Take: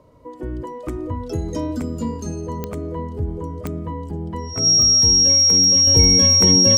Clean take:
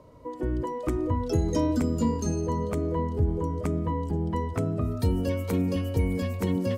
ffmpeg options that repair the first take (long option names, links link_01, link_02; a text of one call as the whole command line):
ffmpeg -i in.wav -af "adeclick=threshold=4,bandreject=frequency=5600:width=30,asetnsamples=nb_out_samples=441:pad=0,asendcmd='5.87 volume volume -8dB',volume=0dB" out.wav